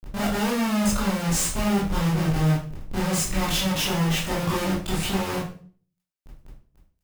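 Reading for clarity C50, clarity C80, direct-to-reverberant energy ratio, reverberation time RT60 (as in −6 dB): 4.0 dB, 9.5 dB, −7.5 dB, 0.45 s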